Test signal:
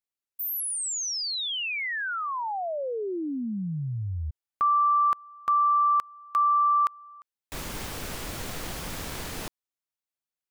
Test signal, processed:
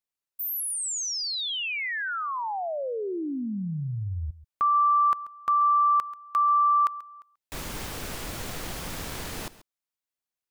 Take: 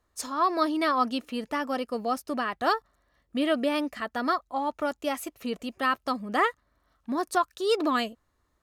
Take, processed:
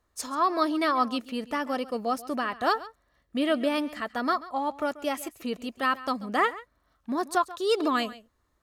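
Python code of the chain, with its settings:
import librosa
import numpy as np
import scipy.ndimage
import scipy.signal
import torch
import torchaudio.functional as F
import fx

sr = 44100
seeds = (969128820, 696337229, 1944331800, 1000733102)

y = x + 10.0 ** (-17.5 / 20.0) * np.pad(x, (int(136 * sr / 1000.0), 0))[:len(x)]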